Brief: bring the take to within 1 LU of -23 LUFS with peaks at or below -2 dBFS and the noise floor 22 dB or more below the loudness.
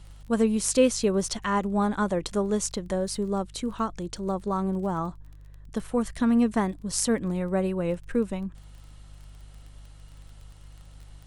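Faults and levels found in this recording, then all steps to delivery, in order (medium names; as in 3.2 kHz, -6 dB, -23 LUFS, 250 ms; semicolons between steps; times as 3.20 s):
tick rate 21 per s; hum 50 Hz; highest harmonic 150 Hz; hum level -44 dBFS; loudness -27.0 LUFS; peak level -8.0 dBFS; loudness target -23.0 LUFS
-> de-click; de-hum 50 Hz, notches 3; trim +4 dB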